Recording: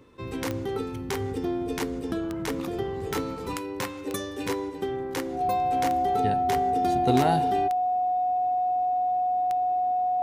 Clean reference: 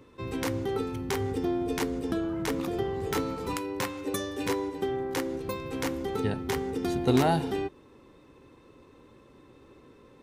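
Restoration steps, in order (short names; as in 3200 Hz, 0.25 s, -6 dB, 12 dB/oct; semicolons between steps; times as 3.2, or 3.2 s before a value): de-click; notch 730 Hz, Q 30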